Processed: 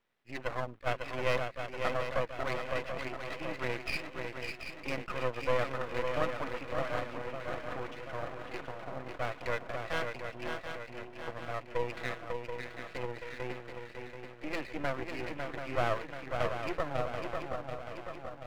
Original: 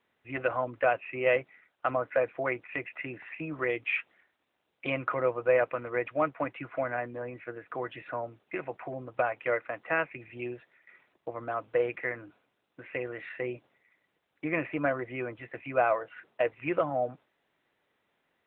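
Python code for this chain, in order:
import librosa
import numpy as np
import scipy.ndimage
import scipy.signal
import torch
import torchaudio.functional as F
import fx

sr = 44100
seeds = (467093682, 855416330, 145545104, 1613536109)

y = fx.echo_swing(x, sr, ms=733, ratio=3, feedback_pct=54, wet_db=-5.5)
y = np.maximum(y, 0.0)
y = fx.attack_slew(y, sr, db_per_s=490.0)
y = F.gain(torch.from_numpy(y), -1.5).numpy()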